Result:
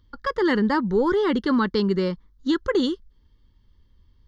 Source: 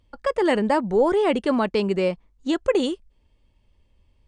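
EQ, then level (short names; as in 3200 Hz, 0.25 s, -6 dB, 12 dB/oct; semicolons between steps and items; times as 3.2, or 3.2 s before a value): fixed phaser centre 2500 Hz, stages 6; +4.0 dB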